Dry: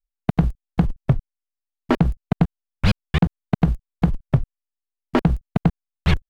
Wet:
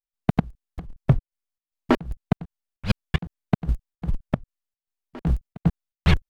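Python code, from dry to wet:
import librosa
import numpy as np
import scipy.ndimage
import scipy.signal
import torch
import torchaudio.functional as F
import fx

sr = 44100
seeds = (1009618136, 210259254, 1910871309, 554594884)

y = fx.volume_shaper(x, sr, bpm=152, per_beat=1, depth_db=-23, release_ms=134.0, shape='slow start')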